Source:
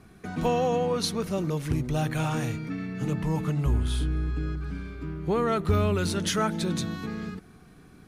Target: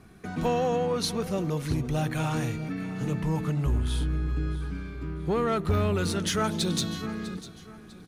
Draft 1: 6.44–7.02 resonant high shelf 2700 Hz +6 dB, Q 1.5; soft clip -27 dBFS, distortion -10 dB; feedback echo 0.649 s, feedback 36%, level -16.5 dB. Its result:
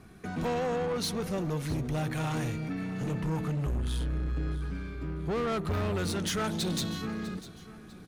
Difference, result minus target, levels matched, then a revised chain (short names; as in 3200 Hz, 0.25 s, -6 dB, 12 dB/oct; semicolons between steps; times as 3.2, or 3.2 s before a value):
soft clip: distortion +12 dB
6.44–7.02 resonant high shelf 2700 Hz +6 dB, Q 1.5; soft clip -16.5 dBFS, distortion -23 dB; feedback echo 0.649 s, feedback 36%, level -16.5 dB